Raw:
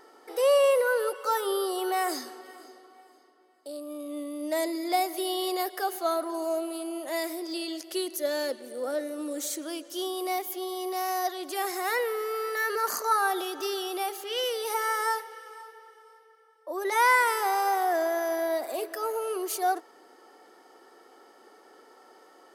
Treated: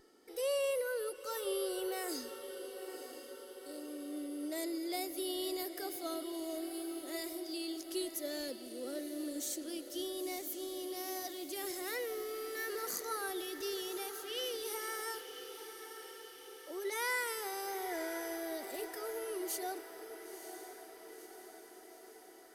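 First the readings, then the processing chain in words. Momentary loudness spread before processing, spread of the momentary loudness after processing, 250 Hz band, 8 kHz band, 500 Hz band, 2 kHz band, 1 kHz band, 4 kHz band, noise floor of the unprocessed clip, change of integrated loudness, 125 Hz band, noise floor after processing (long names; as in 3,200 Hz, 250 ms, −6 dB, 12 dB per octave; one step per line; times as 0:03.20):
13 LU, 13 LU, −6.0 dB, −5.5 dB, −10.5 dB, −11.5 dB, −17.0 dB, −7.0 dB, −57 dBFS, −11.0 dB, can't be measured, −54 dBFS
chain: guitar amp tone stack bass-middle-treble 10-0-1
tape wow and flutter 17 cents
feedback delay with all-pass diffusion 977 ms, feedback 61%, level −10 dB
level +14.5 dB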